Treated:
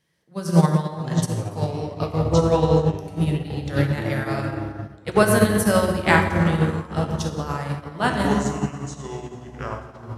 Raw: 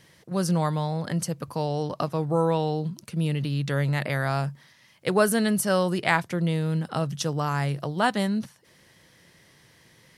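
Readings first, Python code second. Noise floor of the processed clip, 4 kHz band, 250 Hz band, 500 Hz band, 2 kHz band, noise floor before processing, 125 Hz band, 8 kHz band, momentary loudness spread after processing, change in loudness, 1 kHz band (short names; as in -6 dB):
-43 dBFS, +1.5 dB, +5.0 dB, +4.5 dB, +4.5 dB, -58 dBFS, +5.0 dB, +2.0 dB, 15 LU, +4.5 dB, +3.5 dB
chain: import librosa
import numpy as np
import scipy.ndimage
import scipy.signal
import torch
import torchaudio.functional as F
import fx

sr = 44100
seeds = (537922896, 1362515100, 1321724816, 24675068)

y = fx.rev_plate(x, sr, seeds[0], rt60_s=2.8, hf_ratio=0.45, predelay_ms=0, drr_db=-1.0)
y = fx.echo_pitch(y, sr, ms=503, semitones=-7, count=2, db_per_echo=-6.0)
y = fx.upward_expand(y, sr, threshold_db=-30.0, expansion=2.5)
y = F.gain(torch.from_numpy(y), 5.5).numpy()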